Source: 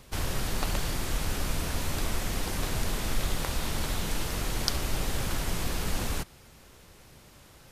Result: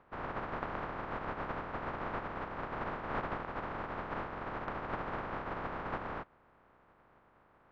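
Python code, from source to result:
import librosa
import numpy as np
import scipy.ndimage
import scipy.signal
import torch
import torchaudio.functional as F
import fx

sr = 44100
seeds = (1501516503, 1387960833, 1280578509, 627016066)

y = fx.spec_flatten(x, sr, power=0.14)
y = fx.ladder_lowpass(y, sr, hz=1600.0, resonance_pct=25)
y = F.gain(torch.from_numpy(y), 2.0).numpy()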